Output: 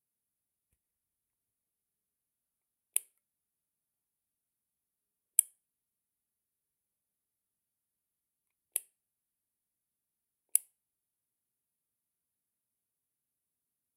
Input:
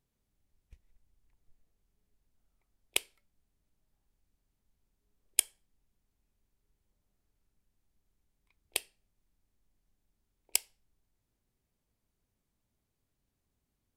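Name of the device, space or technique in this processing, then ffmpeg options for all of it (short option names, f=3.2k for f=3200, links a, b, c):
budget condenser microphone: -af "highpass=110,highshelf=f=7.7k:t=q:w=3:g=13,volume=-14.5dB"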